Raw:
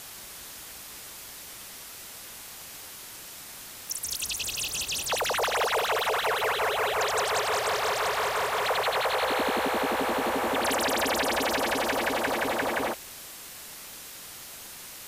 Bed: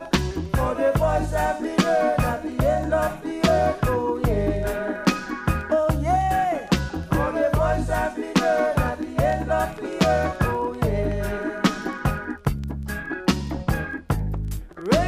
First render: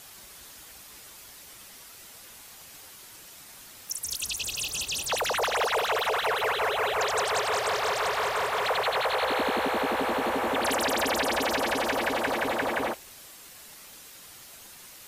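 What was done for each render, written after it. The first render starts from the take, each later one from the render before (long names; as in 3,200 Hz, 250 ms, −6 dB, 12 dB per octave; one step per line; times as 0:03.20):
broadband denoise 6 dB, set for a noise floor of −44 dBFS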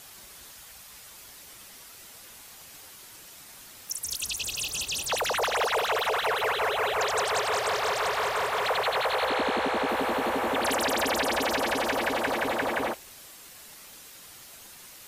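0:00.51–0:01.12: parametric band 330 Hz −8.5 dB
0:09.29–0:09.89: low-pass filter 9,200 Hz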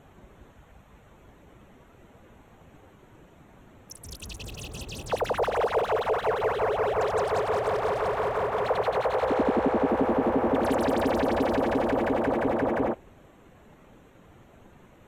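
adaptive Wiener filter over 9 samples
tilt shelving filter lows +9.5 dB, about 880 Hz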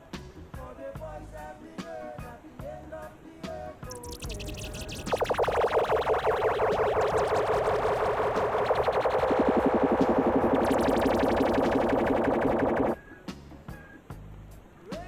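mix in bed −19.5 dB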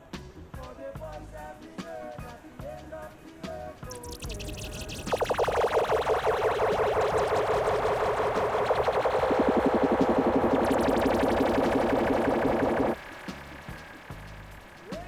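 delay with a high-pass on its return 495 ms, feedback 77%, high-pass 1,800 Hz, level −7.5 dB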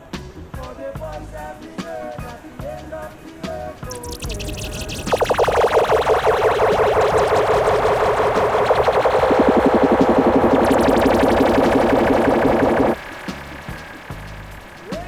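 level +10 dB
brickwall limiter −3 dBFS, peak gain reduction 1.5 dB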